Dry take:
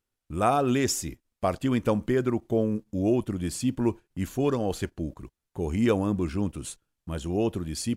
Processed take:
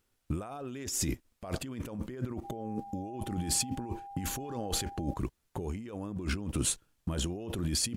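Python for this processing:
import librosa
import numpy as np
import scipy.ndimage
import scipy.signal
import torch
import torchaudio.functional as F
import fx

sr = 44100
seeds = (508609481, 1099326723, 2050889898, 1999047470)

y = fx.over_compress(x, sr, threshold_db=-36.0, ratio=-1.0)
y = fx.dmg_tone(y, sr, hz=800.0, level_db=-43.0, at=(2.43, 5.15), fade=0.02)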